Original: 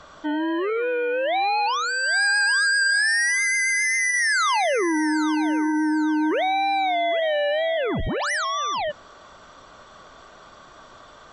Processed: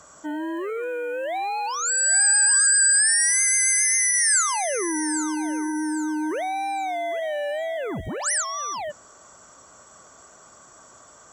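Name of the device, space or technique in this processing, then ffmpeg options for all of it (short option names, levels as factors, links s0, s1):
budget condenser microphone: -af "highpass=61,highshelf=f=5400:t=q:w=3:g=13,volume=0.596"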